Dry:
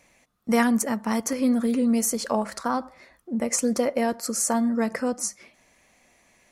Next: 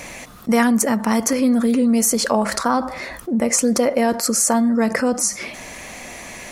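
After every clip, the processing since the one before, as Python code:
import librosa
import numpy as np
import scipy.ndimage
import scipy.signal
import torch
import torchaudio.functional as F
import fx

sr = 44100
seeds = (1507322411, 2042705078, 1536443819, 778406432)

y = fx.env_flatten(x, sr, amount_pct=50)
y = y * 10.0 ** (4.0 / 20.0)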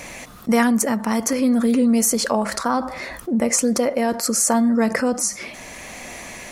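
y = fx.tremolo_shape(x, sr, shape='triangle', hz=0.69, depth_pct=30)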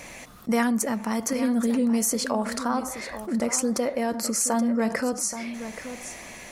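y = x + 10.0 ** (-11.5 / 20.0) * np.pad(x, (int(827 * sr / 1000.0), 0))[:len(x)]
y = y * 10.0 ** (-6.0 / 20.0)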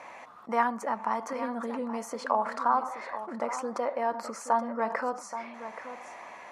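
y = fx.bandpass_q(x, sr, hz=980.0, q=2.4)
y = y * 10.0 ** (6.0 / 20.0)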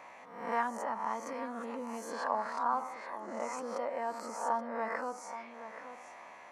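y = fx.spec_swells(x, sr, rise_s=0.69)
y = y * 10.0 ** (-8.0 / 20.0)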